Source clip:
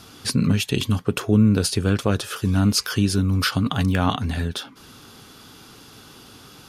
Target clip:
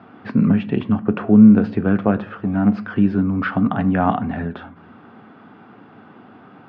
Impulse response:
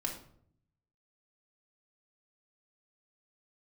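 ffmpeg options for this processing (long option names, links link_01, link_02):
-filter_complex "[0:a]asettb=1/sr,asplit=3[link_01][link_02][link_03];[link_01]atrim=end=2.294[link_04];[link_02]atrim=start=2.29:end=2.96,asetpts=PTS-STARTPTS,afade=type=in:duration=0.004:curve=qsin,afade=type=out:start_time=0.666:duration=0.004:curve=qsin,aeval=exprs='0.422*(cos(1*acos(clip(val(0)/0.422,-1,1)))-cos(1*PI/2))+0.0944*(cos(3*acos(clip(val(0)/0.422,-1,1)))-cos(3*PI/2))+0.0596*(cos(5*acos(clip(val(0)/0.422,-1,1)))-cos(5*PI/2))+0.0237*(cos(7*acos(clip(val(0)/0.422,-1,1)))-cos(7*PI/2))+0.0133*(cos(8*acos(clip(val(0)/0.422,-1,1)))-cos(8*PI/2))':channel_layout=same[link_05];[link_03]atrim=start=2.956[link_06];[link_04][link_05]acrossfade=duration=0.004:curve1=hsin:curve2=qsin[link_07];[link_07][link_06]acrossfade=duration=0.004:curve1=qsin:curve2=hsin,highpass=frequency=110:width=0.5412,highpass=frequency=110:width=1.3066,equalizer=frequency=130:width_type=q:width=4:gain=-4,equalizer=frequency=210:width_type=q:width=4:gain=7,equalizer=frequency=730:width_type=q:width=4:gain=8,lowpass=frequency=2000:width=0.5412,lowpass=frequency=2000:width=1.3066,asplit=2[link_08][link_09];[1:a]atrim=start_sample=2205[link_10];[link_09][link_10]afir=irnorm=-1:irlink=0,volume=-11.5dB[link_11];[link_08][link_11]amix=inputs=2:normalize=0"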